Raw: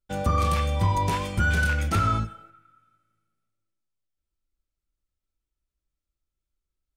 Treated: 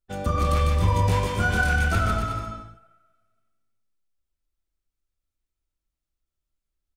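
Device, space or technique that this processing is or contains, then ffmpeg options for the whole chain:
octave pedal: -filter_complex "[0:a]asplit=3[a][b][c];[a]afade=t=out:st=0.79:d=0.02[d];[b]asplit=2[e][f];[f]adelay=22,volume=-3dB[g];[e][g]amix=inputs=2:normalize=0,afade=t=in:st=0.79:d=0.02,afade=t=out:st=1.69:d=0.02[h];[c]afade=t=in:st=1.69:d=0.02[i];[d][h][i]amix=inputs=3:normalize=0,asplit=2[j][k];[k]asetrate=22050,aresample=44100,atempo=2,volume=-9dB[l];[j][l]amix=inputs=2:normalize=0,aecho=1:1:150|270|366|442.8|504.2:0.631|0.398|0.251|0.158|0.1,volume=-2.5dB"

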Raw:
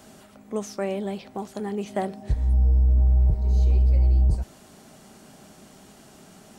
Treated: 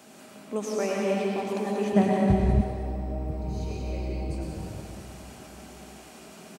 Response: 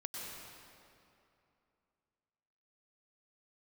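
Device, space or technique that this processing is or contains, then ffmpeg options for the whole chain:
PA in a hall: -filter_complex "[0:a]highpass=170,equalizer=f=2.5k:t=o:w=0.23:g=6.5,aecho=1:1:187:0.422[a];[1:a]atrim=start_sample=2205[b];[a][b]afir=irnorm=-1:irlink=0,asettb=1/sr,asplit=3[c][d][e];[c]atrim=end=1.924[f];[d]atrim=start=1.92:end=2.61,asetpts=PTS-STARTPTS,afade=t=in:d=0.004:c=qsin,afade=t=out:st=0.686:d=0.004:c=qsin,bass=f=250:g=15,treble=f=4k:g=-2[g];[e]atrim=start=2.606[h];[f][g]acrossfade=d=0.004:c1=hsin:c2=qsin[i];[i][h]acrossfade=d=0.004:c1=qsin:c2=hsin,volume=3dB"

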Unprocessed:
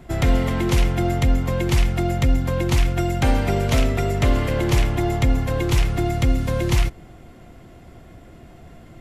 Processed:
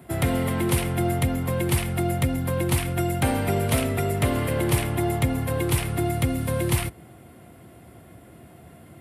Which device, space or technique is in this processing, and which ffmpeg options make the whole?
budget condenser microphone: -af "highpass=f=77:w=0.5412,highpass=f=77:w=1.3066,highshelf=f=7.9k:t=q:w=3:g=7,volume=-2dB"

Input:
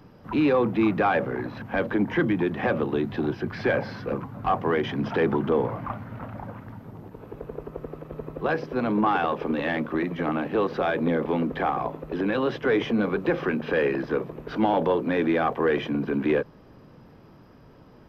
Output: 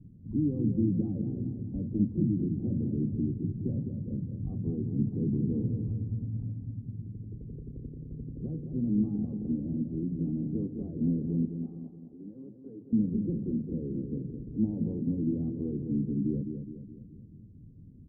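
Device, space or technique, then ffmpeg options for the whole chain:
the neighbour's flat through the wall: -filter_complex "[0:a]lowpass=f=250:w=0.5412,lowpass=f=250:w=1.3066,equalizer=f=95:t=o:w=0.74:g=5,asettb=1/sr,asplit=3[a][b][c];[a]atrim=end=11.454[d];[b]atrim=start=11.45:end=12.93,asetpts=PTS-STARTPTS,afade=t=in:d=0.004:c=qsin,afade=t=out:st=1.476:d=0.004:c=qsin,highpass=f=1.2k:p=1[e];[c]atrim=start=12.926[f];[d][e]acrossfade=d=0.004:c1=hsin:c2=qsin[g];[g][f]acrossfade=d=0.004:c1=qsin:c2=hsin,asplit=2[h][i];[i]adelay=209,lowpass=f=3.2k:p=1,volume=-7dB,asplit=2[j][k];[k]adelay=209,lowpass=f=3.2k:p=1,volume=0.48,asplit=2[l][m];[m]adelay=209,lowpass=f=3.2k:p=1,volume=0.48,asplit=2[n][o];[o]adelay=209,lowpass=f=3.2k:p=1,volume=0.48,asplit=2[p][q];[q]adelay=209,lowpass=f=3.2k:p=1,volume=0.48,asplit=2[r][s];[s]adelay=209,lowpass=f=3.2k:p=1,volume=0.48[t];[h][j][l][n][p][r][t]amix=inputs=7:normalize=0"

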